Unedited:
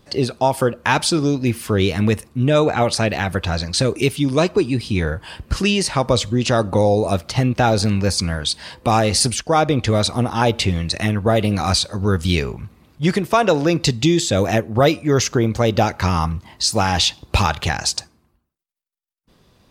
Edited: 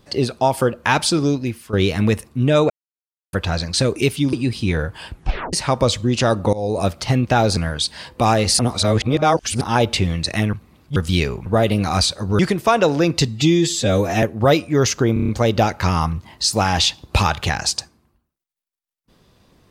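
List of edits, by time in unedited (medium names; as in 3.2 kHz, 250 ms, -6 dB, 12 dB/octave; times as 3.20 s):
1.34–1.73 s: fade out quadratic, to -12.5 dB
2.70–3.33 s: mute
4.33–4.61 s: delete
5.37 s: tape stop 0.44 s
6.81–7.10 s: fade in, from -18.5 dB
7.85–8.23 s: delete
9.25–10.27 s: reverse
11.19–12.12 s: swap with 12.62–13.05 s
13.94–14.57 s: stretch 1.5×
15.48 s: stutter 0.03 s, 6 plays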